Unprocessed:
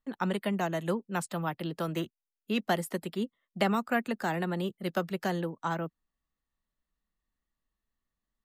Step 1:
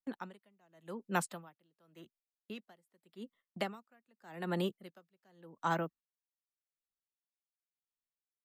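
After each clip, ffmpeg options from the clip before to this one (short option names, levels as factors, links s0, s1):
-af "agate=range=0.112:threshold=0.00282:ratio=16:detection=peak,lowshelf=f=140:g=-8,aeval=exprs='val(0)*pow(10,-40*(0.5-0.5*cos(2*PI*0.87*n/s))/20)':c=same,volume=1.12"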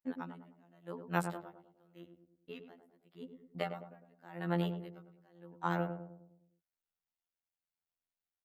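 -filter_complex "[0:a]afftfilt=real='hypot(re,im)*cos(PI*b)':imag='0':win_size=2048:overlap=0.75,equalizer=f=7700:w=0.66:g=-10.5,asplit=2[s0][s1];[s1]adelay=103,lowpass=f=840:p=1,volume=0.501,asplit=2[s2][s3];[s3]adelay=103,lowpass=f=840:p=1,volume=0.53,asplit=2[s4][s5];[s5]adelay=103,lowpass=f=840:p=1,volume=0.53,asplit=2[s6][s7];[s7]adelay=103,lowpass=f=840:p=1,volume=0.53,asplit=2[s8][s9];[s9]adelay=103,lowpass=f=840:p=1,volume=0.53,asplit=2[s10][s11];[s11]adelay=103,lowpass=f=840:p=1,volume=0.53,asplit=2[s12][s13];[s13]adelay=103,lowpass=f=840:p=1,volume=0.53[s14];[s2][s4][s6][s8][s10][s12][s14]amix=inputs=7:normalize=0[s15];[s0][s15]amix=inputs=2:normalize=0,volume=1.5"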